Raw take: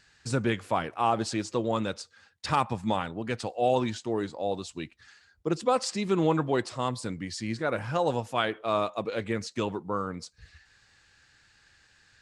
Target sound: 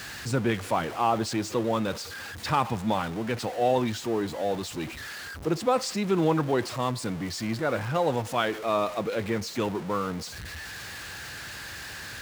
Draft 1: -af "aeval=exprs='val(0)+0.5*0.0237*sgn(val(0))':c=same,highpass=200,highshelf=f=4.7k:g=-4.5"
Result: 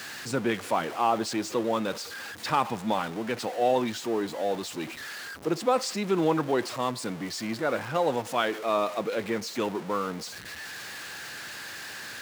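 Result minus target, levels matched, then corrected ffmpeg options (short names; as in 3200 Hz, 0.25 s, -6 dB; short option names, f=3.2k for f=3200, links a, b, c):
125 Hz band -6.5 dB
-af "aeval=exprs='val(0)+0.5*0.0237*sgn(val(0))':c=same,highpass=56,highshelf=f=4.7k:g=-4.5"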